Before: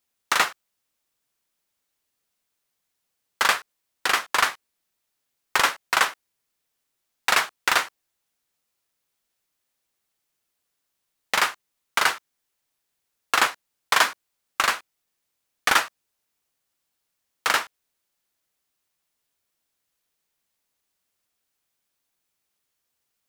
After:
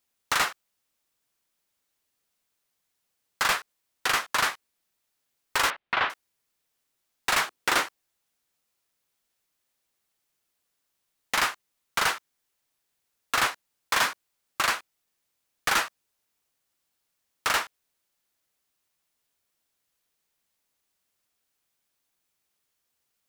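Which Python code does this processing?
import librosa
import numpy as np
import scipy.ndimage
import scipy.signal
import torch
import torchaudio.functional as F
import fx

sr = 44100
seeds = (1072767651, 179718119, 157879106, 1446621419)

y = np.clip(x, -10.0 ** (-19.0 / 20.0), 10.0 ** (-19.0 / 20.0))
y = fx.lowpass(y, sr, hz=3400.0, slope=24, at=(5.7, 6.1))
y = fx.peak_eq(y, sr, hz=330.0, db=7.5, octaves=1.5, at=(7.46, 7.86))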